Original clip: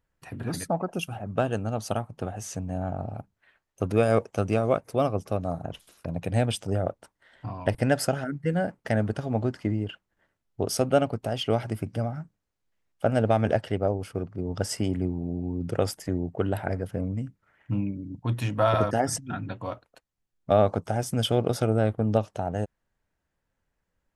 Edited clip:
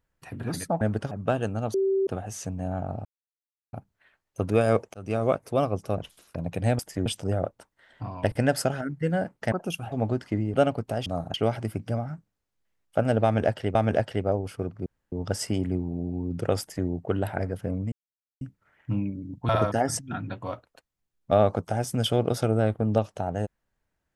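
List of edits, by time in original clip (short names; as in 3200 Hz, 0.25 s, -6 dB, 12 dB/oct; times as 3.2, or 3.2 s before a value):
0.81–1.21 swap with 8.95–9.25
1.84–2.17 bleep 387 Hz -20.5 dBFS
3.15 insert silence 0.68 s
4.36–4.65 fade in
5.4–5.68 move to 11.41
9.87–10.89 cut
13.31–13.82 loop, 2 plays
14.42 insert room tone 0.26 s
15.9–16.17 copy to 6.49
17.22 insert silence 0.49 s
18.3–18.68 cut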